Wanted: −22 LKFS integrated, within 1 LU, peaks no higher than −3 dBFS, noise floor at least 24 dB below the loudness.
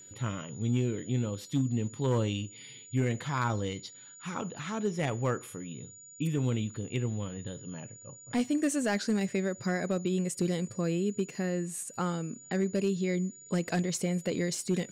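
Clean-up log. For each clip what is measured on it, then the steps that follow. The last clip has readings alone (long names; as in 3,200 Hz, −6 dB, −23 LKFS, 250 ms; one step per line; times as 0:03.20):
share of clipped samples 0.4%; peaks flattened at −21.0 dBFS; interfering tone 6,900 Hz; level of the tone −49 dBFS; integrated loudness −32.0 LKFS; sample peak −21.0 dBFS; target loudness −22.0 LKFS
→ clipped peaks rebuilt −21 dBFS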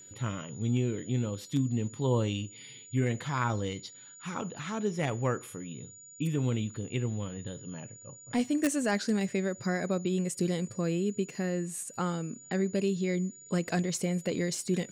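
share of clipped samples 0.0%; interfering tone 6,900 Hz; level of the tone −49 dBFS
→ notch filter 6,900 Hz, Q 30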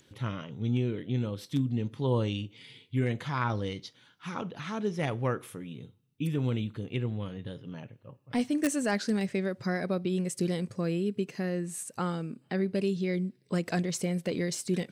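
interfering tone none found; integrated loudness −32.0 LKFS; sample peak −12.0 dBFS; target loudness −22.0 LKFS
→ level +10 dB
brickwall limiter −3 dBFS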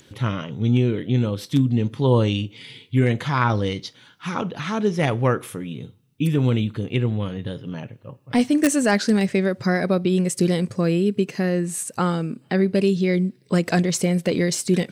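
integrated loudness −22.0 LKFS; sample peak −3.0 dBFS; background noise floor −55 dBFS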